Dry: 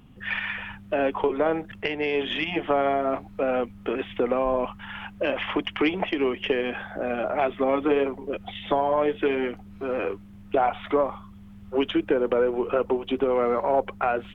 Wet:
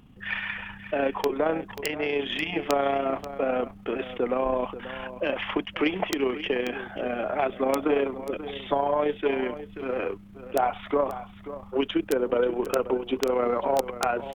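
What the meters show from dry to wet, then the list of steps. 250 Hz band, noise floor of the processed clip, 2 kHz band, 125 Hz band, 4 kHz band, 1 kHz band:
−2.0 dB, −47 dBFS, −1.5 dB, −2.0 dB, can't be measured, −1.5 dB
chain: wrap-around overflow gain 10.5 dB
amplitude modulation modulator 30 Hz, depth 25%
on a send: single-tap delay 536 ms −13.5 dB
on the sum: level that may rise only so fast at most 580 dB per second

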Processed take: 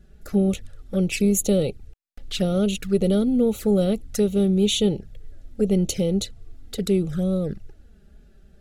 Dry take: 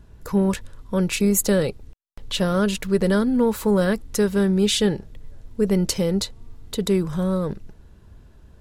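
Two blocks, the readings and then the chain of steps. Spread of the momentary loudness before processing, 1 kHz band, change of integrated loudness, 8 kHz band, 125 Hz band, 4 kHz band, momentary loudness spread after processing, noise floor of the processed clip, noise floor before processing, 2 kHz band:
11 LU, −9.0 dB, −0.5 dB, −2.5 dB, 0.0 dB, −2.0 dB, 11 LU, −52 dBFS, −49 dBFS, −7.0 dB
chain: flanger swept by the level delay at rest 6 ms, full sweep at −18.5 dBFS
Butterworth band-reject 1,000 Hz, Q 2.7

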